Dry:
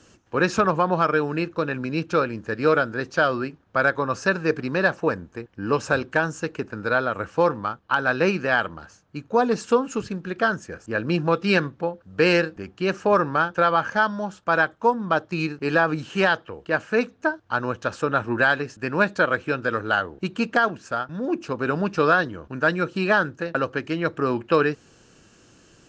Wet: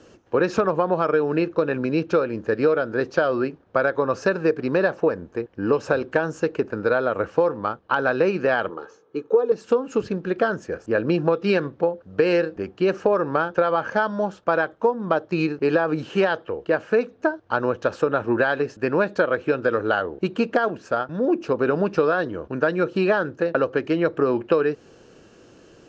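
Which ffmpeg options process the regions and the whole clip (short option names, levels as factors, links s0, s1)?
-filter_complex "[0:a]asettb=1/sr,asplit=3[s0][s1][s2];[s0]atrim=end=8.704[s3];[s1]atrim=start=8.7:end=9.52,asetpts=PTS-STARTPTS,afade=t=in:d=0.004:c=qsin,afade=t=out:st=0.816:d=0.004:c=qsin,highpass=240,equalizer=f=440:t=q:w=4:g=9,equalizer=f=690:t=q:w=4:g=-7,equalizer=f=1100:t=q:w=4:g=4,equalizer=f=1900:t=q:w=4:g=-5,equalizer=f=2700:t=q:w=4:g=-4,equalizer=f=4700:t=q:w=4:g=-8,lowpass=f=6800:w=0.5412,lowpass=f=6800:w=1.3066,aecho=1:1:2.4:0.35,atrim=end_sample=36162[s4];[s2]atrim=start=9.516[s5];[s3][s4]acrossfade=d=0.004:c1=hsin:c2=qsin[s6];[s6][s5]acrossfade=d=0.004:c1=qsin:c2=hsin,lowpass=5700,equalizer=f=470:t=o:w=1.5:g=9.5,acompressor=threshold=0.158:ratio=6"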